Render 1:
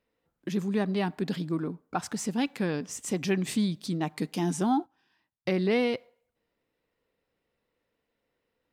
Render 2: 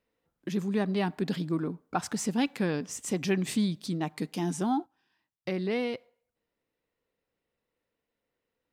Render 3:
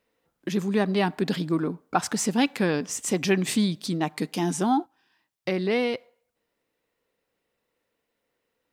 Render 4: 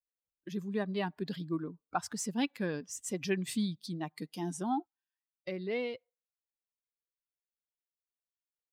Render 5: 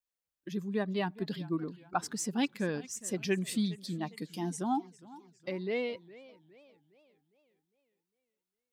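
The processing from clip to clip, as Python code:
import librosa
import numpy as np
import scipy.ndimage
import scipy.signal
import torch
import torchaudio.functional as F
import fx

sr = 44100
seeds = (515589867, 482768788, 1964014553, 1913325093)

y1 = fx.rider(x, sr, range_db=10, speed_s=2.0)
y1 = F.gain(torch.from_numpy(y1), -1.0).numpy()
y2 = fx.low_shelf(y1, sr, hz=190.0, db=-7.0)
y2 = F.gain(torch.from_numpy(y2), 7.0).numpy()
y3 = fx.bin_expand(y2, sr, power=1.5)
y3 = F.gain(torch.from_numpy(y3), -8.0).numpy()
y4 = fx.echo_warbled(y3, sr, ms=408, feedback_pct=46, rate_hz=2.8, cents=159, wet_db=-19.5)
y4 = F.gain(torch.from_numpy(y4), 1.5).numpy()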